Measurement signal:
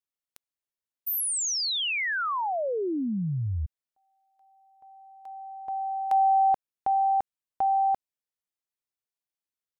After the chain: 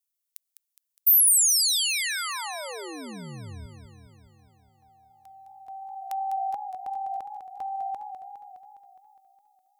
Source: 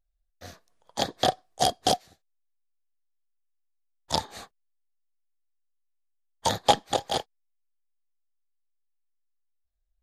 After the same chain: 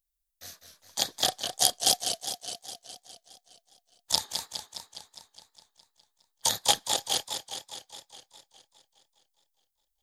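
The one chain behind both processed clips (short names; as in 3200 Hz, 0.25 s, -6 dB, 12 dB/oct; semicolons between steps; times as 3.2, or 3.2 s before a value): pre-emphasis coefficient 0.9; warbling echo 0.206 s, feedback 65%, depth 140 cents, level -8 dB; gain +8 dB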